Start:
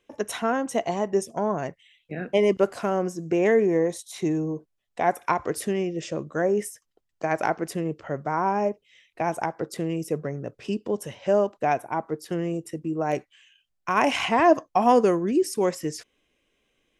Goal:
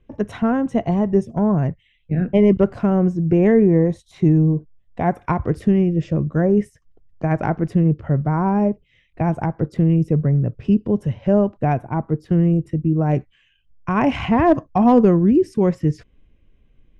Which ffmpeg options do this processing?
ffmpeg -i in.wav -af "aemphasis=mode=reproduction:type=bsi,asoftclip=type=hard:threshold=-8.5dB,bass=frequency=250:gain=12,treble=frequency=4000:gain=-7" out.wav

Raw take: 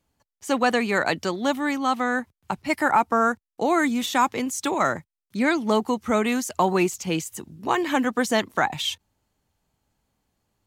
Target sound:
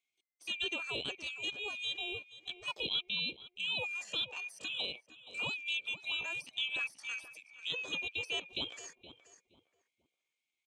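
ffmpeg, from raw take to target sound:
ffmpeg -i in.wav -filter_complex "[0:a]afftfilt=real='real(if(lt(b,272),68*(eq(floor(b/68),0)*1+eq(floor(b/68),1)*0+eq(floor(b/68),2)*3+eq(floor(b/68),3)*2)+mod(b,68),b),0)':imag='imag(if(lt(b,272),68*(eq(floor(b/68),0)*1+eq(floor(b/68),1)*0+eq(floor(b/68),2)*3+eq(floor(b/68),3)*2)+mod(b,68),b),0)':win_size=2048:overlap=0.75,lowpass=frequency=5100:width=0.5412,lowpass=frequency=5100:width=1.3066,equalizer=frequency=1100:width_type=o:width=2.4:gain=-12.5,asplit=2[link_01][link_02];[link_02]adelay=474,lowpass=frequency=960:poles=1,volume=-11.5dB,asplit=2[link_03][link_04];[link_04]adelay=474,lowpass=frequency=960:poles=1,volume=0.29,asplit=2[link_05][link_06];[link_06]adelay=474,lowpass=frequency=960:poles=1,volume=0.29[link_07];[link_01][link_03][link_05][link_07]amix=inputs=4:normalize=0,acrossover=split=2700[link_08][link_09];[link_09]acompressor=threshold=-48dB:ratio=8[link_10];[link_08][link_10]amix=inputs=2:normalize=0,asetrate=62367,aresample=44100,atempo=0.707107,highpass=frequency=710:poles=1,volume=-5dB" out.wav

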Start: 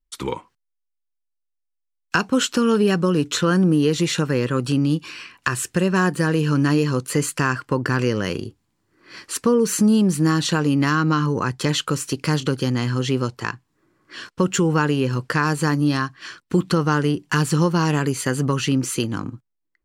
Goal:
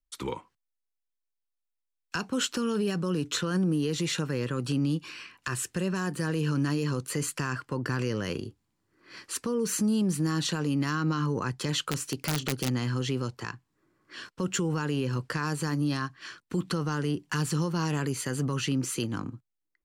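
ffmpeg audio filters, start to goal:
ffmpeg -i in.wav -filter_complex "[0:a]acrossover=split=130|3600[link_01][link_02][link_03];[link_02]alimiter=limit=-15.5dB:level=0:latency=1:release=27[link_04];[link_01][link_04][link_03]amix=inputs=3:normalize=0,asettb=1/sr,asplit=3[link_05][link_06][link_07];[link_05]atrim=end=11.894[link_08];[link_06]atrim=start=11.89:end=12.69,asetpts=PTS-STARTPTS,afade=type=in:duration=0.004:curve=qsin,afade=type=out:start_time=0.796:duration=0.004:curve=qsin,aeval=exprs='(mod(4.73*val(0)+1,2)-1)/4.73':channel_layout=same[link_09];[link_07]atrim=start=12.686[link_10];[link_08][link_09]acrossfade=duration=0.004:curve1=hsin:curve2=qsin[link_11];[link_11][link_10]acrossfade=duration=0.004:curve1=qsin:curve2=hsin,volume=-6.5dB" out.wav

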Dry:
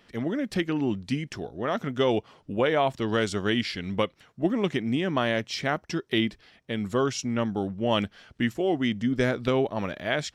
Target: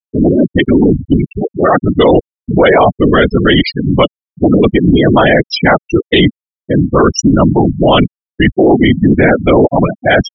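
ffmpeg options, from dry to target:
ffmpeg -i in.wav -af "afftfilt=real='hypot(re,im)*cos(2*PI*random(0))':imag='hypot(re,im)*sin(2*PI*random(1))':win_size=512:overlap=0.75,afftfilt=real='re*gte(hypot(re,im),0.0355)':imag='im*gte(hypot(re,im),0.0355)':win_size=1024:overlap=0.75,apsyclip=28.5dB,volume=-2dB" out.wav

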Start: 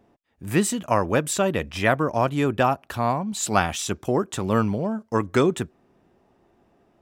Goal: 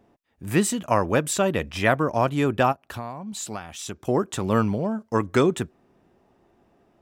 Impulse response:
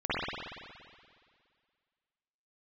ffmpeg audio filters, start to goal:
-filter_complex "[0:a]asplit=3[link_01][link_02][link_03];[link_01]afade=type=out:start_time=2.71:duration=0.02[link_04];[link_02]acompressor=threshold=-30dB:ratio=16,afade=type=in:start_time=2.71:duration=0.02,afade=type=out:start_time=4.07:duration=0.02[link_05];[link_03]afade=type=in:start_time=4.07:duration=0.02[link_06];[link_04][link_05][link_06]amix=inputs=3:normalize=0"

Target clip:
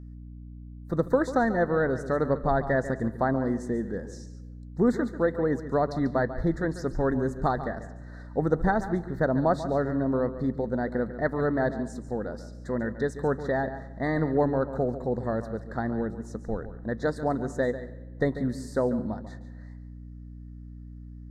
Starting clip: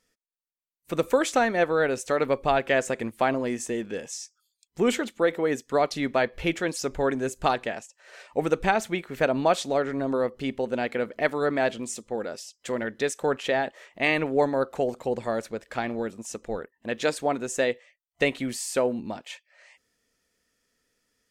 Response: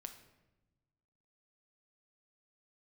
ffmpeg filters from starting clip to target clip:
-filter_complex "[0:a]asuperstop=centerf=2700:order=12:qfactor=1.5,bass=frequency=250:gain=11,treble=frequency=4000:gain=-15,asplit=2[link_01][link_02];[1:a]atrim=start_sample=2205,asetrate=37044,aresample=44100,adelay=142[link_03];[link_02][link_03]afir=irnorm=-1:irlink=0,volume=-8dB[link_04];[link_01][link_04]amix=inputs=2:normalize=0,aeval=exprs='val(0)+0.0126*(sin(2*PI*60*n/s)+sin(2*PI*2*60*n/s)/2+sin(2*PI*3*60*n/s)/3+sin(2*PI*4*60*n/s)/4+sin(2*PI*5*60*n/s)/5)':channel_layout=same,volume=-3dB"

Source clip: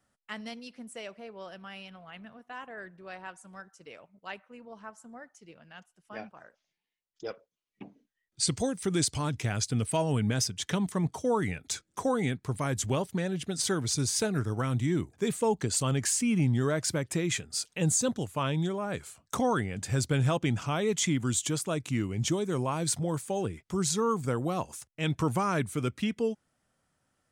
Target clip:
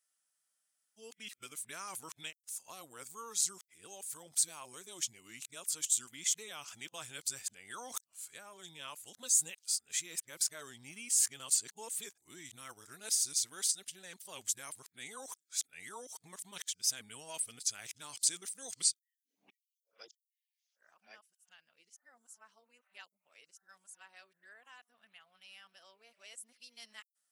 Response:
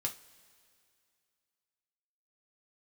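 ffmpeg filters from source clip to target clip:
-af "areverse,aderivative"

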